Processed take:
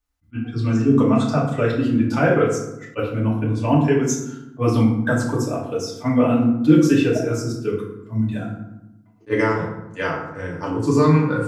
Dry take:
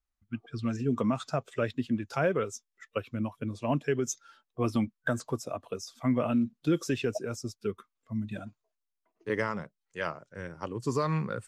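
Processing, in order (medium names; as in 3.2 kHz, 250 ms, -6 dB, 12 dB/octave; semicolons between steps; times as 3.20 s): FDN reverb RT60 0.89 s, low-frequency decay 1.55×, high-frequency decay 0.55×, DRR -5 dB; attacks held to a fixed rise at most 460 dB/s; trim +4 dB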